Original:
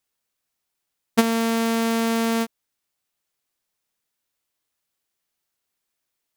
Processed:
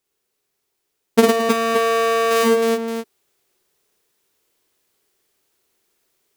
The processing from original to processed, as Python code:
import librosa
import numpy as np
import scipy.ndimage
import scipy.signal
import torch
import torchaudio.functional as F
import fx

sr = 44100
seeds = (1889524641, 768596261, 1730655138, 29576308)

y = fx.high_shelf(x, sr, hz=3500.0, db=-10.0, at=(1.25, 2.31))
y = fx.echo_multitap(y, sr, ms=(51, 80, 107, 216, 315, 572), db=(-3.0, -12.0, -3.5, -15.5, -5.0, -13.0))
y = fx.rider(y, sr, range_db=3, speed_s=0.5)
y = fx.peak_eq(y, sr, hz=400.0, db=12.5, octaves=0.55)
y = y * librosa.db_to_amplitude(4.0)